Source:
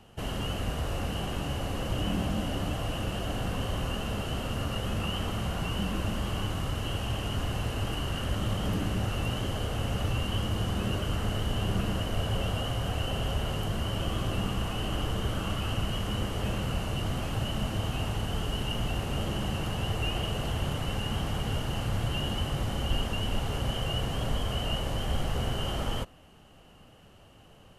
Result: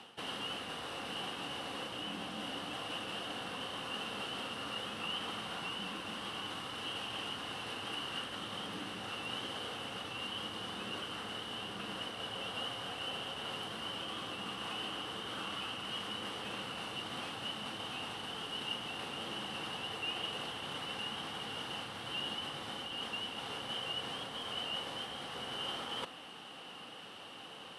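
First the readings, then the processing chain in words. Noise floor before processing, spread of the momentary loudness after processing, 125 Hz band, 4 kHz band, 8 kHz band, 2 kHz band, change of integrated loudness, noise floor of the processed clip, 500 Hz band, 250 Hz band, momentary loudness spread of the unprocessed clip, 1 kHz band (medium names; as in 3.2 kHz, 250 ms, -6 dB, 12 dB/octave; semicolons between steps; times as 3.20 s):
-54 dBFS, 3 LU, -23.0 dB, -1.5 dB, -8.0 dB, -3.0 dB, -8.0 dB, -50 dBFS, -10.0 dB, -13.0 dB, 2 LU, -5.0 dB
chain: reverse; compression 4:1, threshold -44 dBFS, peak gain reduction 18 dB; reverse; cabinet simulation 360–9900 Hz, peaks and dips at 390 Hz -5 dB, 620 Hz -9 dB, 3.6 kHz +7 dB, 6.9 kHz -10 dB; trim +10 dB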